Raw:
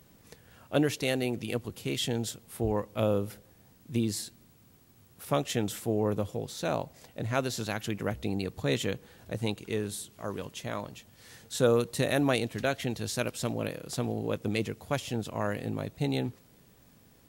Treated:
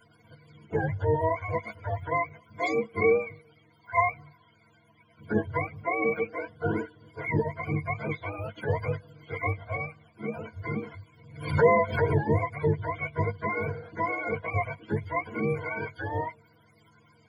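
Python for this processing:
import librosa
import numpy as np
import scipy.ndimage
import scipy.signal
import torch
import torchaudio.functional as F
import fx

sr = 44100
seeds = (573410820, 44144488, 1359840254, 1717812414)

y = fx.octave_mirror(x, sr, pivot_hz=490.0)
y = fx.ripple_eq(y, sr, per_octave=1.8, db=18)
y = fx.pre_swell(y, sr, db_per_s=97.0, at=(10.86, 12.2))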